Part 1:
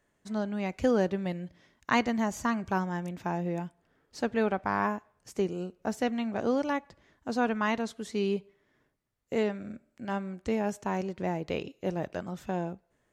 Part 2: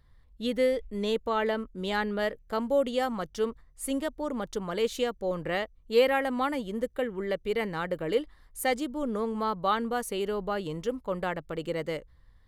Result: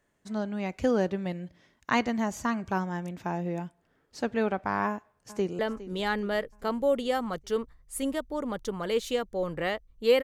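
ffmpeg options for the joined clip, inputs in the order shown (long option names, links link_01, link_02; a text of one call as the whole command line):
ffmpeg -i cue0.wav -i cue1.wav -filter_complex "[0:a]apad=whole_dur=10.23,atrim=end=10.23,atrim=end=5.592[link_01];[1:a]atrim=start=1.468:end=6.11[link_02];[link_01][link_02]acrossfade=duration=0.004:curve1=hsin:curve2=hsin,asplit=2[link_03][link_04];[link_04]afade=type=in:start_time=4.88:duration=0.01,afade=type=out:start_time=5.59:duration=0.01,aecho=0:1:410|820|1230|1640|2050:0.177828|0.0978054|0.053793|0.0295861|0.0162724[link_05];[link_03][link_05]amix=inputs=2:normalize=0" out.wav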